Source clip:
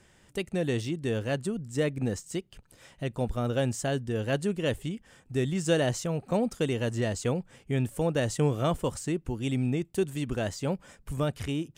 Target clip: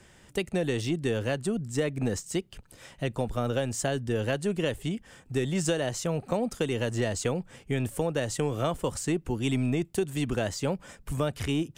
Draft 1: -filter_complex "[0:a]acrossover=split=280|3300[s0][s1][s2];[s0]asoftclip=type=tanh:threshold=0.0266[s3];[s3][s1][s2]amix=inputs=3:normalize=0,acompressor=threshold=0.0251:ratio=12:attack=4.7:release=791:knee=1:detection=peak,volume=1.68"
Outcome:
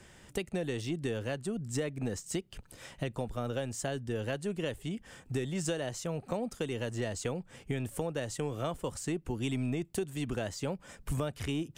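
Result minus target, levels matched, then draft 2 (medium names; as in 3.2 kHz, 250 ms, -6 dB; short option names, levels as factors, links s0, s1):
compression: peak gain reduction +6.5 dB
-filter_complex "[0:a]acrossover=split=280|3300[s0][s1][s2];[s0]asoftclip=type=tanh:threshold=0.0266[s3];[s3][s1][s2]amix=inputs=3:normalize=0,acompressor=threshold=0.0562:ratio=12:attack=4.7:release=791:knee=1:detection=peak,volume=1.68"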